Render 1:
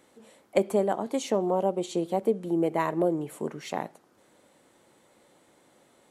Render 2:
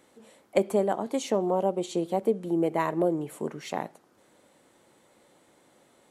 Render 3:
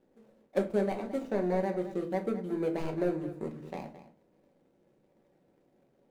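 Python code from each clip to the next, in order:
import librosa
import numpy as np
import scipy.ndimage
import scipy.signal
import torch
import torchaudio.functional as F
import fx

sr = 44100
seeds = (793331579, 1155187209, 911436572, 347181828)

y1 = x
y2 = scipy.signal.medfilt(y1, 41)
y2 = y2 + 10.0 ** (-14.0 / 20.0) * np.pad(y2, (int(218 * sr / 1000.0), 0))[:len(y2)]
y2 = fx.room_shoebox(y2, sr, seeds[0], volume_m3=160.0, walls='furnished', distance_m=1.1)
y2 = y2 * librosa.db_to_amplitude(-6.0)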